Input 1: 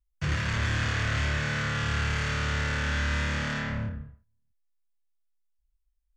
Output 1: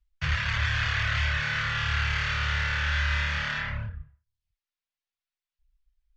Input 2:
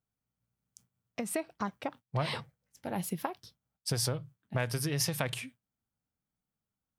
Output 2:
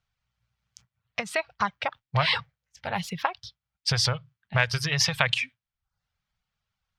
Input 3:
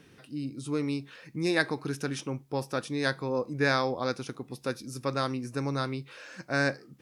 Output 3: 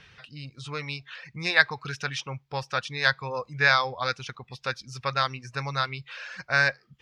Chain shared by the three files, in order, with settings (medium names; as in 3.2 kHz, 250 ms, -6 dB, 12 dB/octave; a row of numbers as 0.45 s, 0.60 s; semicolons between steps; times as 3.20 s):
distance through air 200 m; reverb removal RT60 0.54 s; amplifier tone stack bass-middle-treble 10-0-10; normalise loudness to -27 LUFS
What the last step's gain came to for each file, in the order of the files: +12.0 dB, +21.0 dB, +16.0 dB